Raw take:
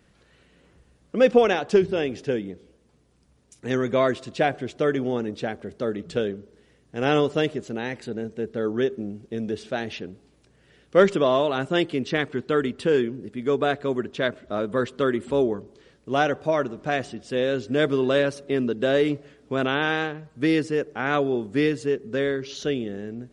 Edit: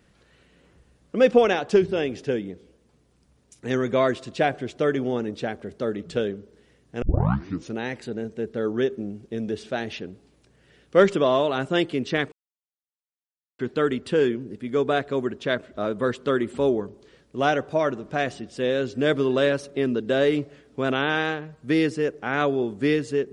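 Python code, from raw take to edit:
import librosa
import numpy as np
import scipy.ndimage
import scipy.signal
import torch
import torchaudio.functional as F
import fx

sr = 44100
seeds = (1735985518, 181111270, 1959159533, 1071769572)

y = fx.edit(x, sr, fx.tape_start(start_s=7.02, length_s=0.73),
    fx.insert_silence(at_s=12.32, length_s=1.27), tone=tone)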